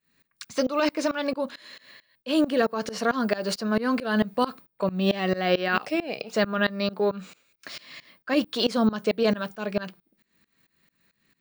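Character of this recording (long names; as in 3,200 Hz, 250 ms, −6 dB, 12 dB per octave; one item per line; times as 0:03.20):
tremolo saw up 4.5 Hz, depth 95%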